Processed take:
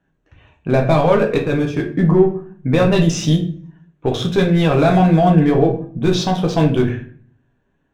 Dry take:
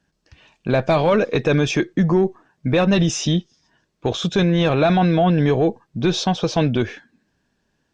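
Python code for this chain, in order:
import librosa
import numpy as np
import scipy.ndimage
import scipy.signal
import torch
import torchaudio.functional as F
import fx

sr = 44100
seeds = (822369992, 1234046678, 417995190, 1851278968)

y = fx.wiener(x, sr, points=9)
y = fx.level_steps(y, sr, step_db=20, at=(1.38, 1.84))
y = fx.room_shoebox(y, sr, seeds[0], volume_m3=46.0, walls='mixed', distance_m=0.55)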